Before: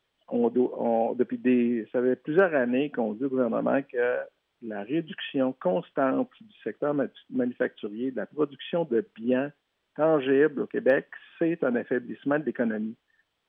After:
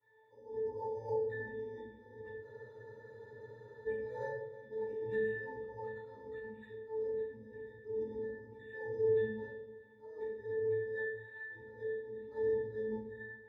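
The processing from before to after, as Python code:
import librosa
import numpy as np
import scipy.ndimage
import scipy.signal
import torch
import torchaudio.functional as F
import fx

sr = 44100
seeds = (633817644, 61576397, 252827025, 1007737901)

y = fx.octave_divider(x, sr, octaves=2, level_db=4.0)
y = fx.over_compress(y, sr, threshold_db=-32.0, ratio=-1.0)
y = scipy.signal.sosfilt(scipy.signal.butter(2, 280.0, 'highpass', fs=sr, output='sos'), y)
y = fx.high_shelf(y, sr, hz=3100.0, db=4.5)
y = y + 0.84 * np.pad(y, (int(2.2 * sr / 1000.0), 0))[:len(y)]
y = fx.auto_swell(y, sr, attack_ms=443.0)
y = np.repeat(scipy.signal.resample_poly(y, 1, 8), 8)[:len(y)]
y = fx.octave_resonator(y, sr, note='A', decay_s=0.5)
y = fx.echo_feedback(y, sr, ms=325, feedback_pct=50, wet_db=-18)
y = fx.room_shoebox(y, sr, seeds[0], volume_m3=180.0, walls='mixed', distance_m=3.6)
y = fx.spec_freeze(y, sr, seeds[1], at_s=2.45, hold_s=1.42)
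y = y * librosa.db_to_amplitude(6.0)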